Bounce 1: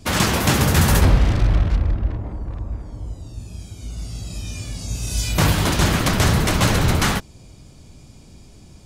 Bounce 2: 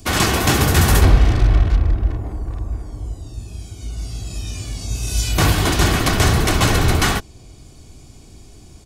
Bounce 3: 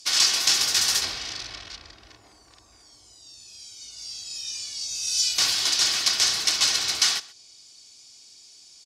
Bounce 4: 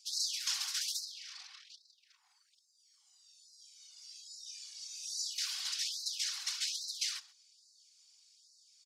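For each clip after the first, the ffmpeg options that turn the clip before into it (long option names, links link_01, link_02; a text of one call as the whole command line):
ffmpeg -i in.wav -filter_complex "[0:a]aecho=1:1:2.7:0.35,acrossover=split=590|6700[link_01][link_02][link_03];[link_03]acompressor=mode=upward:threshold=-53dB:ratio=2.5[link_04];[link_01][link_02][link_04]amix=inputs=3:normalize=0,volume=1.5dB" out.wav
ffmpeg -i in.wav -filter_complex "[0:a]bandpass=frequency=5100:width_type=q:width=2.6:csg=0,asplit=2[link_01][link_02];[link_02]adelay=128.3,volume=-20dB,highshelf=frequency=4000:gain=-2.89[link_03];[link_01][link_03]amix=inputs=2:normalize=0,volume=7.5dB" out.wav
ffmpeg -i in.wav -af "asubboost=boost=7:cutoff=240,afftfilt=real='hypot(re,im)*cos(2*PI*random(0))':imag='hypot(re,im)*sin(2*PI*random(1))':win_size=512:overlap=0.75,afftfilt=real='re*gte(b*sr/1024,690*pow(3900/690,0.5+0.5*sin(2*PI*1.2*pts/sr)))':imag='im*gte(b*sr/1024,690*pow(3900/690,0.5+0.5*sin(2*PI*1.2*pts/sr)))':win_size=1024:overlap=0.75,volume=-8.5dB" out.wav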